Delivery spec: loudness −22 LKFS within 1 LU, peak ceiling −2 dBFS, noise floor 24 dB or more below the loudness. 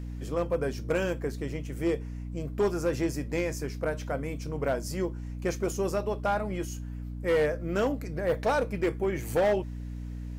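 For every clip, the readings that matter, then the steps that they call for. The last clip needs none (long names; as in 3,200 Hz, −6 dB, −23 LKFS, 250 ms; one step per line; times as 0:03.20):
share of clipped samples 1.3%; peaks flattened at −20.0 dBFS; mains hum 60 Hz; hum harmonics up to 300 Hz; level of the hum −35 dBFS; integrated loudness −30.5 LKFS; sample peak −20.0 dBFS; target loudness −22.0 LKFS
→ clipped peaks rebuilt −20 dBFS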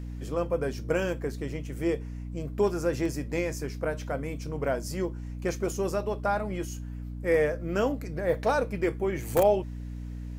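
share of clipped samples 0.0%; mains hum 60 Hz; hum harmonics up to 300 Hz; level of the hum −34 dBFS
→ mains-hum notches 60/120/180/240/300 Hz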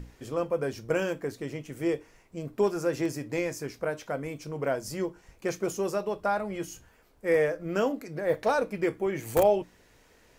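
mains hum none found; integrated loudness −30.0 LKFS; sample peak −10.5 dBFS; target loudness −22.0 LKFS
→ level +8 dB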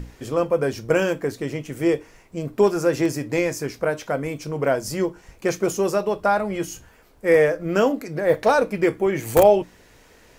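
integrated loudness −22.0 LKFS; sample peak −2.5 dBFS; background noise floor −53 dBFS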